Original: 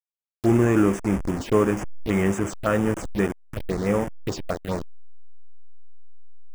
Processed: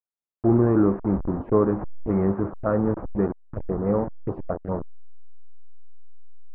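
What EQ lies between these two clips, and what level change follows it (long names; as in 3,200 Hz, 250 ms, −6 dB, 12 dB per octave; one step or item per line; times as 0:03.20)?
low-pass filter 1,200 Hz 24 dB per octave
0.0 dB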